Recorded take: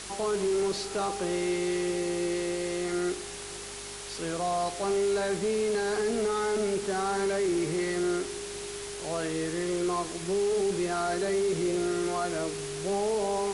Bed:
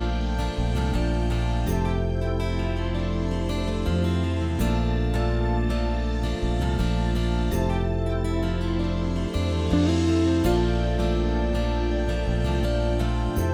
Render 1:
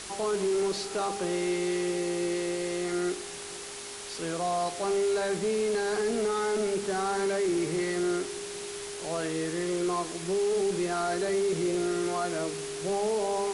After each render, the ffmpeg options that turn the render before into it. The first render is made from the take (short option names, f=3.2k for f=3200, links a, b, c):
-af "bandreject=f=50:t=h:w=4,bandreject=f=100:t=h:w=4,bandreject=f=150:t=h:w=4,bandreject=f=200:t=h:w=4,bandreject=f=250:t=h:w=4"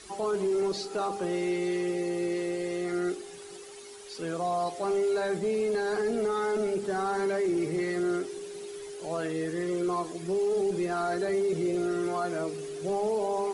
-af "afftdn=nr=12:nf=-40"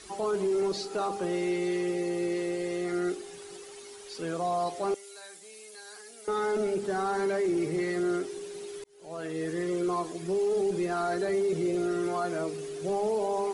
-filter_complex "[0:a]asettb=1/sr,asplit=3[a][b][c];[a]atrim=end=4.944[d];[b]atrim=start=4.94:end=6.28,asetpts=PTS-STARTPTS,afade=t=in:d=0.004:c=qsin,afade=t=out:st=1.336:d=0.004:c=qsin,aderivative[e];[c]atrim=start=6.276[f];[d][e]acrossfade=d=0.004:c1=hsin:c2=qsin[g];[g][f]acrossfade=d=0.004:c1=qsin:c2=hsin,asplit=2[h][i];[h]atrim=end=8.84,asetpts=PTS-STARTPTS,afade=t=out:st=8.836:d=0.004:c=hsin[j];[i]atrim=start=8.84,asetpts=PTS-STARTPTS,afade=t=in:d=0.66[k];[j][k]concat=n=2:v=0:a=1"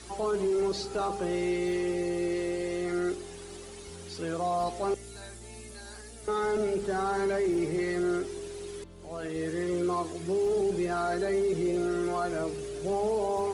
-filter_complex "[1:a]volume=-25dB[a];[0:a][a]amix=inputs=2:normalize=0"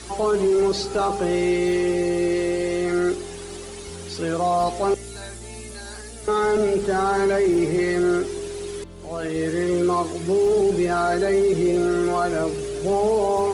-af "volume=8.5dB"